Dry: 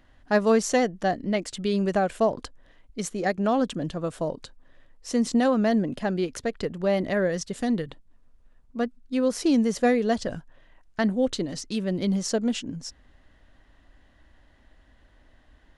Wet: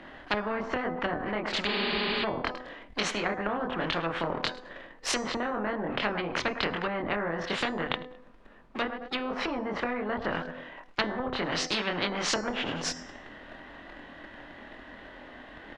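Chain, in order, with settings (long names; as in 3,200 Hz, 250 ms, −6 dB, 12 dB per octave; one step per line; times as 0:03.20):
double-tracking delay 24 ms −2 dB
on a send: repeating echo 105 ms, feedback 34%, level −22.5 dB
on the sum: leveller curve on the samples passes 1
three-way crossover with the lows and the highs turned down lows −20 dB, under 180 Hz, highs −19 dB, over 3,700 Hz
treble cut that deepens with the level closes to 590 Hz, closed at −16.5 dBFS
healed spectral selection 0:01.71–0:02.21, 210–5,200 Hz before
hum removal 251.8 Hz, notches 39
every bin compressed towards the loudest bin 4 to 1
level −3 dB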